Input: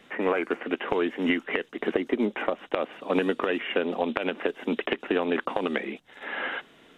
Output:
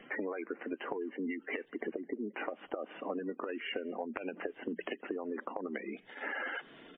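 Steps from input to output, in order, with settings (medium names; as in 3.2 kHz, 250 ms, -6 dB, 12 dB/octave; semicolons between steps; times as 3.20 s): spectral gate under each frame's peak -15 dB strong; peaking EQ 300 Hz +2.5 dB 0.21 oct; hum notches 60/120/180 Hz; compression 8:1, threshold -36 dBFS, peak gain reduction 16.5 dB; speakerphone echo 210 ms, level -28 dB; trim +1.5 dB; MP3 24 kbps 8 kHz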